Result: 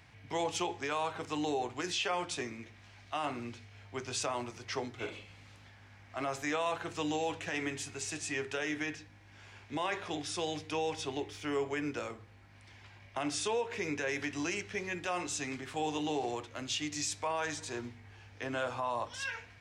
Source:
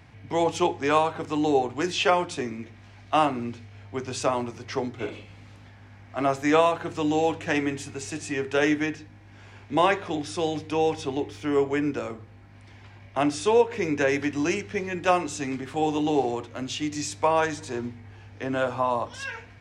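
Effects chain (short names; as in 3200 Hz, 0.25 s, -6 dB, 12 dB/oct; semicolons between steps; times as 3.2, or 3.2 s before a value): tilt shelf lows -4 dB, about 1200 Hz; limiter -19.5 dBFS, peak gain reduction 11 dB; bell 250 Hz -2.5 dB 0.77 oct; gain -5 dB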